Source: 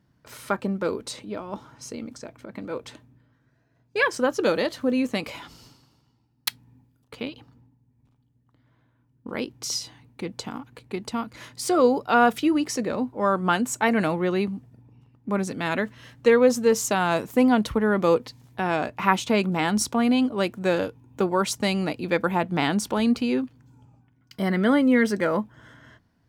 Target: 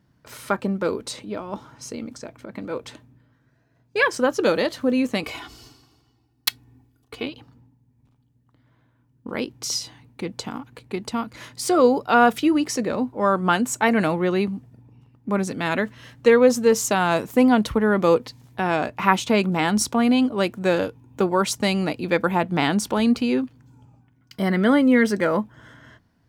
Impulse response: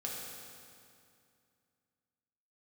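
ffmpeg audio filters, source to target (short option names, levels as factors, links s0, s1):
-filter_complex "[0:a]asettb=1/sr,asplit=3[s0][s1][s2];[s0]atrim=end=5.234[s3];[s1]atrim=start=5.23:end=7.26,asetpts=PTS-STARTPTS,afade=t=in:d=0.004:c=qsin,afade=t=out:st=2.026:d=0.004:c=qsin,aecho=1:1:2.7:0.67,atrim=end_sample=89523[s4];[s2]atrim=start=7.256[s5];[s3][s4]acrossfade=d=0.004:c1=hsin:c2=qsin[s6];[s6][s5]acrossfade=d=0.004:c1=qsin:c2=hsin,volume=1.33"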